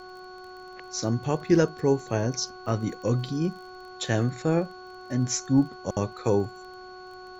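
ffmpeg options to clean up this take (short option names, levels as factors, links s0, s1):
-af "adeclick=t=4,bandreject=f=368.7:t=h:w=4,bandreject=f=737.4:t=h:w=4,bandreject=f=1106.1:t=h:w=4,bandreject=f=1474.8:t=h:w=4,bandreject=f=4400:w=30,agate=range=0.0891:threshold=0.0158"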